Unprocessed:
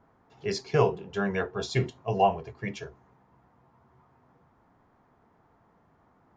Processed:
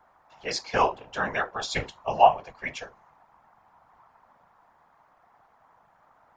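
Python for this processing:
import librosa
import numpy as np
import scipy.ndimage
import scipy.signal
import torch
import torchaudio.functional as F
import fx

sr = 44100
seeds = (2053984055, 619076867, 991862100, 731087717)

y = fx.whisperise(x, sr, seeds[0])
y = fx.low_shelf_res(y, sr, hz=520.0, db=-12.0, q=1.5)
y = F.gain(torch.from_numpy(y), 4.5).numpy()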